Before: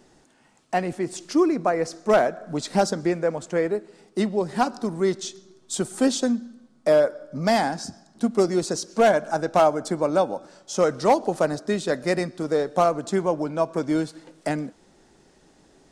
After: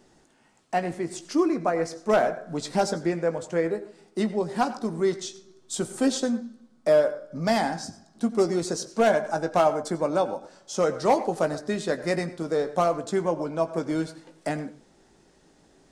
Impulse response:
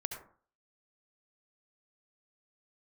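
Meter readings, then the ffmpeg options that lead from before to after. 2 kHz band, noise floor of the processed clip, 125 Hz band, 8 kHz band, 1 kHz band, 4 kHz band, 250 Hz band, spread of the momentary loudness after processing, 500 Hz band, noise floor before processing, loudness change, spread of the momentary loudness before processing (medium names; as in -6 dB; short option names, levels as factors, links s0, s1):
-2.5 dB, -60 dBFS, -2.0 dB, -2.5 dB, -2.5 dB, -2.5 dB, -2.5 dB, 11 LU, -2.5 dB, -59 dBFS, -2.5 dB, 11 LU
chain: -filter_complex "[0:a]asplit=2[s0][s1];[1:a]atrim=start_sample=2205,afade=t=out:st=0.18:d=0.01,atrim=end_sample=8379,adelay=18[s2];[s1][s2]afir=irnorm=-1:irlink=0,volume=0.355[s3];[s0][s3]amix=inputs=2:normalize=0,volume=0.708"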